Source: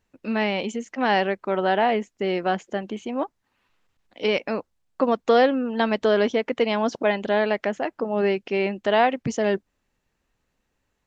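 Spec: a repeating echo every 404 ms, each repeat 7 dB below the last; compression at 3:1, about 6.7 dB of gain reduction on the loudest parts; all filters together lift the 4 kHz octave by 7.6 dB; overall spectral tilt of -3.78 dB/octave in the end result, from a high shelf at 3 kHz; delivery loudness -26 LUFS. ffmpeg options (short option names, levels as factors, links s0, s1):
-af "highshelf=f=3000:g=8,equalizer=f=4000:t=o:g=5,acompressor=threshold=0.0891:ratio=3,aecho=1:1:404|808|1212|1616|2020:0.447|0.201|0.0905|0.0407|0.0183,volume=0.944"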